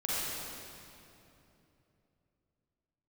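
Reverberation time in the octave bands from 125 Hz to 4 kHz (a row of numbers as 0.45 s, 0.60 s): 4.1 s, 3.6 s, 3.3 s, 2.7 s, 2.5 s, 2.2 s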